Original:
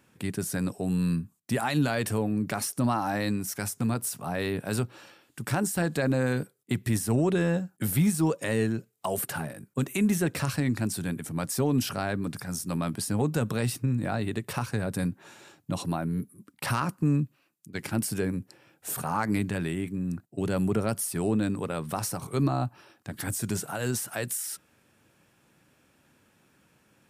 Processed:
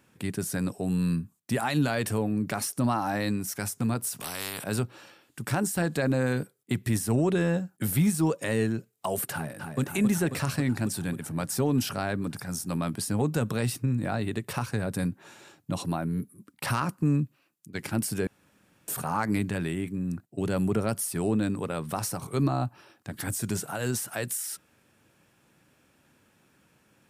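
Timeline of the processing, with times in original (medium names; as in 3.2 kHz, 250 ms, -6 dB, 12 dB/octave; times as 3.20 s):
4.20–4.64 s: spectrum-flattening compressor 4:1
9.32–9.80 s: echo throw 270 ms, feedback 75%, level -5.5 dB
18.27–18.88 s: room tone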